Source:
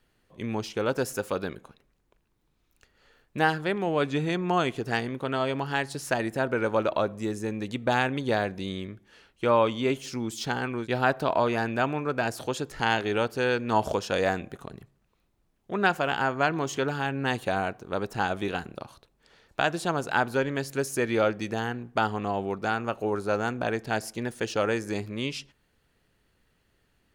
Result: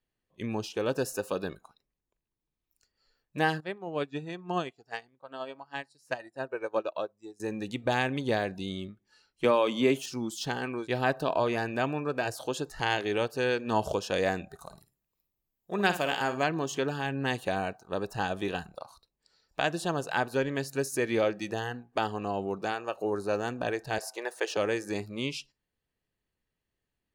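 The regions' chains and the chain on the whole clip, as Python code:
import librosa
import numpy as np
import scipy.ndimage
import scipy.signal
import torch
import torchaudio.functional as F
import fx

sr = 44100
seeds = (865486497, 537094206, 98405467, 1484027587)

y = fx.chain(x, sr, fx.highpass(hz=46.0, slope=12),
    fx.high_shelf(hz=9300.0, db=-6.5),
    fx.upward_expand(threshold_db=-34.0, expansion=2.5), at=(3.6, 7.4))
y = fx.chain(y, sr, fx.highpass(hz=130.0, slope=12),
    fx.high_shelf(hz=7800.0, db=7.5),
    fx.band_squash(depth_pct=100), at=(9.44, 10.06))
y = fx.chain(y, sr, fx.peak_eq(hz=14000.0, db=9.0, octaves=1.9),
    fx.room_flutter(wall_m=9.4, rt60_s=0.3), at=(14.58, 16.44))
y = fx.chain(y, sr, fx.highpass(hz=430.0, slope=12),
    fx.peak_eq(hz=850.0, db=6.5, octaves=2.3), at=(23.98, 24.57))
y = fx.notch(y, sr, hz=1400.0, q=7.8)
y = fx.dynamic_eq(y, sr, hz=950.0, q=1.6, threshold_db=-35.0, ratio=4.0, max_db=-3)
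y = fx.noise_reduce_blind(y, sr, reduce_db=15)
y = F.gain(torch.from_numpy(y), -1.5).numpy()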